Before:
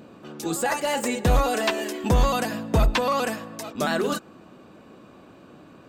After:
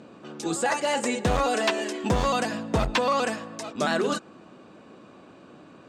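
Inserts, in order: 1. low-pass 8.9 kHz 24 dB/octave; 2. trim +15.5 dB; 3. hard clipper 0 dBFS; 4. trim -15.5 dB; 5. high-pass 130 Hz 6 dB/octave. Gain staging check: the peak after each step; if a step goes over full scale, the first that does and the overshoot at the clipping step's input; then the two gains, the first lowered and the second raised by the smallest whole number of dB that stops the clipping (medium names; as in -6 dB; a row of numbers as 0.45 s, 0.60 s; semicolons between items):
-12.5 dBFS, +3.0 dBFS, 0.0 dBFS, -15.5 dBFS, -11.5 dBFS; step 2, 3.0 dB; step 2 +12.5 dB, step 4 -12.5 dB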